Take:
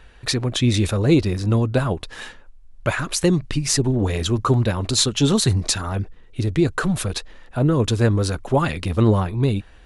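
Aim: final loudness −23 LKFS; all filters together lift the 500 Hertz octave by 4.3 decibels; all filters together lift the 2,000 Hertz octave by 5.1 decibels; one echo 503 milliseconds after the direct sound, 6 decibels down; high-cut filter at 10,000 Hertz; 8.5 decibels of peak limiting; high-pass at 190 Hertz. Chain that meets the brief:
high-pass filter 190 Hz
low-pass filter 10,000 Hz
parametric band 500 Hz +5.5 dB
parametric band 2,000 Hz +6.5 dB
brickwall limiter −10 dBFS
single-tap delay 503 ms −6 dB
level −1.5 dB

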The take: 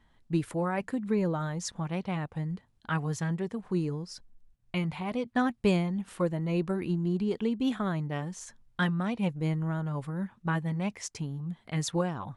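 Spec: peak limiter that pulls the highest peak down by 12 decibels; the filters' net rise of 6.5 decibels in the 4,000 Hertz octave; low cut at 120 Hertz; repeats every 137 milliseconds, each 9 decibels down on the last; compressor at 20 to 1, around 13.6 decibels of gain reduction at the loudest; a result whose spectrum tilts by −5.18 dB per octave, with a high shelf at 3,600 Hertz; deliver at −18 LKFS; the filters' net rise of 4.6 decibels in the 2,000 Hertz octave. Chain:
high-pass filter 120 Hz
parametric band 2,000 Hz +4 dB
high-shelf EQ 3,600 Hz +4 dB
parametric band 4,000 Hz +4.5 dB
downward compressor 20 to 1, threshold −34 dBFS
brickwall limiter −31.5 dBFS
repeating echo 137 ms, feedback 35%, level −9 dB
level +22 dB

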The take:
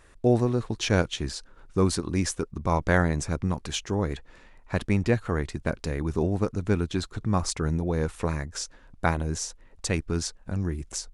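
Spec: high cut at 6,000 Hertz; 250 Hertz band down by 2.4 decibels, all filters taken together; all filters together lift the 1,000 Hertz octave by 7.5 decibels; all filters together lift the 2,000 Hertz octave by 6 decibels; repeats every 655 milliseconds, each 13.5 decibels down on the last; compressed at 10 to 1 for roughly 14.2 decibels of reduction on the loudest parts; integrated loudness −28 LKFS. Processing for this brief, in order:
low-pass filter 6,000 Hz
parametric band 250 Hz −4 dB
parametric band 1,000 Hz +8.5 dB
parametric band 2,000 Hz +4.5 dB
downward compressor 10 to 1, threshold −28 dBFS
repeating echo 655 ms, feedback 21%, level −13.5 dB
level +6.5 dB

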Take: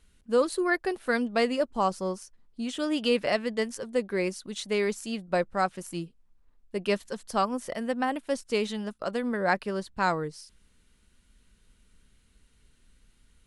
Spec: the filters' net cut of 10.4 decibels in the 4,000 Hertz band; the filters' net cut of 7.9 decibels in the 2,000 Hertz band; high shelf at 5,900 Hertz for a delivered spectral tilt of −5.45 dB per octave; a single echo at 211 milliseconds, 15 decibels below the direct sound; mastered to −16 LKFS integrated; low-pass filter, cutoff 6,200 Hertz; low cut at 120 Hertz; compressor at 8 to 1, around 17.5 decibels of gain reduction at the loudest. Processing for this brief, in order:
high-pass filter 120 Hz
low-pass filter 6,200 Hz
parametric band 2,000 Hz −8 dB
parametric band 4,000 Hz −7.5 dB
high-shelf EQ 5,900 Hz −8 dB
downward compressor 8 to 1, threshold −39 dBFS
single-tap delay 211 ms −15 dB
level +27.5 dB

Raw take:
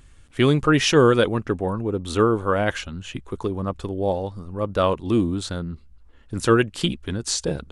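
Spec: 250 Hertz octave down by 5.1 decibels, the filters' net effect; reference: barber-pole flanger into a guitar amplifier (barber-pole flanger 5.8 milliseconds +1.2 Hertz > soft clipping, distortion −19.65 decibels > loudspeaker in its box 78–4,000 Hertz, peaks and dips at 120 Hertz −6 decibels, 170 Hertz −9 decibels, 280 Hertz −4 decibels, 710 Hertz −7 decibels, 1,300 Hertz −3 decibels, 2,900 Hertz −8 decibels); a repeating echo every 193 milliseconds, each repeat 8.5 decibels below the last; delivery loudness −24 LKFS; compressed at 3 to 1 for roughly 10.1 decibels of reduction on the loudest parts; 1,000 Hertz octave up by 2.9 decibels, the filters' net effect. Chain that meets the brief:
parametric band 250 Hz −3.5 dB
parametric band 1,000 Hz +7 dB
downward compressor 3 to 1, threshold −24 dBFS
repeating echo 193 ms, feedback 38%, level −8.5 dB
barber-pole flanger 5.8 ms +1.2 Hz
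soft clipping −18.5 dBFS
loudspeaker in its box 78–4,000 Hz, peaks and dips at 120 Hz −6 dB, 170 Hz −9 dB, 280 Hz −4 dB, 710 Hz −7 dB, 1,300 Hz −3 dB, 2,900 Hz −8 dB
level +10.5 dB

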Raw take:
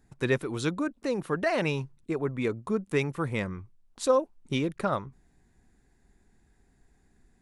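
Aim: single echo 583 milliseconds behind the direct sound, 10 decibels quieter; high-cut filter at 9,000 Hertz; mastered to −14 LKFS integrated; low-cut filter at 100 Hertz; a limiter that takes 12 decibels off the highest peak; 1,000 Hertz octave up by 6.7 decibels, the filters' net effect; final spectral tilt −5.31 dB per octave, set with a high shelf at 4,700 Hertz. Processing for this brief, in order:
high-pass filter 100 Hz
low-pass filter 9,000 Hz
parametric band 1,000 Hz +8 dB
high-shelf EQ 4,700 Hz +4.5 dB
brickwall limiter −20 dBFS
single-tap delay 583 ms −10 dB
level +18 dB

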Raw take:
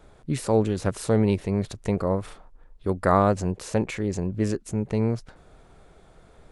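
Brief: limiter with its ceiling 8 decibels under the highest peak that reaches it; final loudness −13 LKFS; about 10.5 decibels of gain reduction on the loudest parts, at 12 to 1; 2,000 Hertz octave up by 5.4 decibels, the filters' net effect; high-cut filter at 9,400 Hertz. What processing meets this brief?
low-pass filter 9,400 Hz
parametric band 2,000 Hz +7 dB
downward compressor 12 to 1, threshold −24 dBFS
level +20 dB
brickwall limiter −0.5 dBFS

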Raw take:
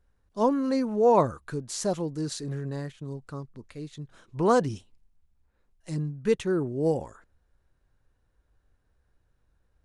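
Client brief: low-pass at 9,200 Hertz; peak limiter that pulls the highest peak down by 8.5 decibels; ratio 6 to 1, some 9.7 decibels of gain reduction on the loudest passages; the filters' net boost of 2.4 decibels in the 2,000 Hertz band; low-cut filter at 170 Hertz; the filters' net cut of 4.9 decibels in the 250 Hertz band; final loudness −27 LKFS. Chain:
high-pass filter 170 Hz
low-pass filter 9,200 Hz
parametric band 250 Hz −5 dB
parametric band 2,000 Hz +3.5 dB
downward compressor 6 to 1, threshold −27 dBFS
level +10 dB
brickwall limiter −15.5 dBFS

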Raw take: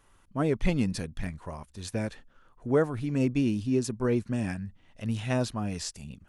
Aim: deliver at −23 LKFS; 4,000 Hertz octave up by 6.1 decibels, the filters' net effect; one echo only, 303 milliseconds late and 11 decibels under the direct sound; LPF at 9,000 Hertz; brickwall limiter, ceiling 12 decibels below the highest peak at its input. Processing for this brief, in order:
low-pass filter 9,000 Hz
parametric band 4,000 Hz +8 dB
brickwall limiter −23.5 dBFS
single-tap delay 303 ms −11 dB
level +11.5 dB

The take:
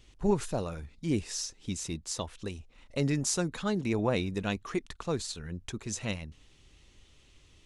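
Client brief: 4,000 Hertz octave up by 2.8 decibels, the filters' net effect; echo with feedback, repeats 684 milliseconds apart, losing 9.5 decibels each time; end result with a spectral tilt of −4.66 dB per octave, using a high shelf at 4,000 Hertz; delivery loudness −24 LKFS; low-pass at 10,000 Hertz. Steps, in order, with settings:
low-pass filter 10,000 Hz
high-shelf EQ 4,000 Hz −4.5 dB
parametric band 4,000 Hz +6.5 dB
repeating echo 684 ms, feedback 33%, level −9.5 dB
level +8.5 dB

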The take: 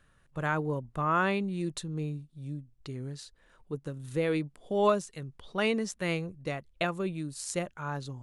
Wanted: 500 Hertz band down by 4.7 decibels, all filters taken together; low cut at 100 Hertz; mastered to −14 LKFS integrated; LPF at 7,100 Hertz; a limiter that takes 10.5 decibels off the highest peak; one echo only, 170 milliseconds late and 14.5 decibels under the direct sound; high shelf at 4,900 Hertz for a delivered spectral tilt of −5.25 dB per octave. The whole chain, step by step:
high-pass filter 100 Hz
low-pass filter 7,100 Hz
parametric band 500 Hz −6 dB
high-shelf EQ 4,900 Hz +4 dB
brickwall limiter −24.5 dBFS
single-tap delay 170 ms −14.5 dB
level +22.5 dB

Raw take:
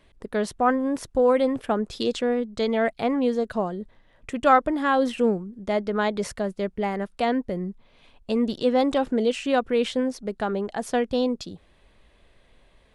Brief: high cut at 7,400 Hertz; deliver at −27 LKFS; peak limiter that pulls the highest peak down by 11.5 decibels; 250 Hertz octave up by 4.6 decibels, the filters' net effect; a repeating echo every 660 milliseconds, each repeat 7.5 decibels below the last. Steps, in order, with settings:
low-pass filter 7,400 Hz
parametric band 250 Hz +5 dB
brickwall limiter −16.5 dBFS
repeating echo 660 ms, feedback 42%, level −7.5 dB
level −1 dB

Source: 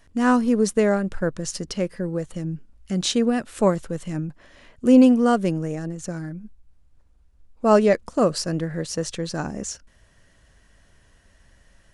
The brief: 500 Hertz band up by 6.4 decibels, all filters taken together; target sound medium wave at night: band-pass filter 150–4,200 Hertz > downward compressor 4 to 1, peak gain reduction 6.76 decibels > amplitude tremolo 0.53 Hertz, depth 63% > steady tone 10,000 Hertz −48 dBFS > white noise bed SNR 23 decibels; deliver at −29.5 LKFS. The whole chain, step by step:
band-pass filter 150–4,200 Hz
parametric band 500 Hz +7.5 dB
downward compressor 4 to 1, threshold −13 dBFS
amplitude tremolo 0.53 Hz, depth 63%
steady tone 10,000 Hz −48 dBFS
white noise bed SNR 23 dB
level −5 dB

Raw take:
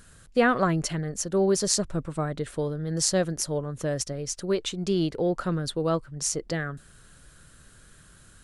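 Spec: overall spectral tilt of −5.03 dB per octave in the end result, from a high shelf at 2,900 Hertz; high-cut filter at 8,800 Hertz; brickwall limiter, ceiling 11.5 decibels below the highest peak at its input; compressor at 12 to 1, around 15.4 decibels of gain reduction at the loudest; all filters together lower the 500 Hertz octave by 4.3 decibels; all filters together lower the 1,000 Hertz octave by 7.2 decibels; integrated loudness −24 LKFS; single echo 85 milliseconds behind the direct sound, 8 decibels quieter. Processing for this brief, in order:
low-pass filter 8,800 Hz
parametric band 500 Hz −3.5 dB
parametric band 1,000 Hz −8.5 dB
high-shelf EQ 2,900 Hz −5 dB
downward compressor 12 to 1, threshold −36 dBFS
brickwall limiter −33 dBFS
single-tap delay 85 ms −8 dB
level +18 dB

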